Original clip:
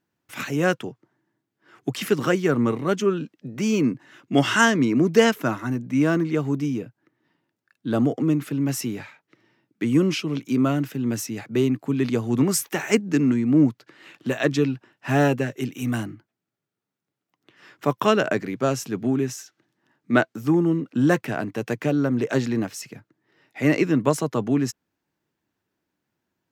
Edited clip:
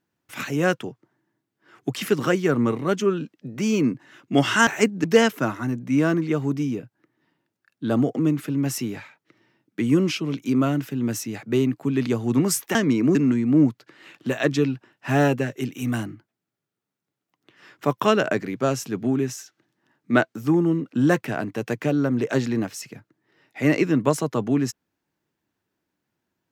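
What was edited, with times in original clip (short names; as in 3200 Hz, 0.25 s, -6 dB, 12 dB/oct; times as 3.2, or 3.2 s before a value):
4.67–5.07 swap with 12.78–13.15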